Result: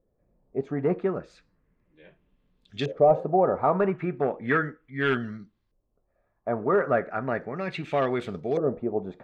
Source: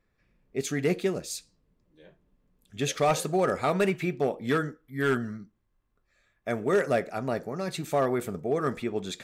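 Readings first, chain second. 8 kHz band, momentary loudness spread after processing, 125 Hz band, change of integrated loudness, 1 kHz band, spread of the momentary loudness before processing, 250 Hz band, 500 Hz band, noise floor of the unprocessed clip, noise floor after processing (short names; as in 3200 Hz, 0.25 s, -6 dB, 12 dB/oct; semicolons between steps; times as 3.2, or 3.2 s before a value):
under -20 dB, 12 LU, 0.0 dB, +2.0 dB, +3.5 dB, 10 LU, +0.5 dB, +2.5 dB, -74 dBFS, -74 dBFS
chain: LFO low-pass saw up 0.35 Hz 530–4600 Hz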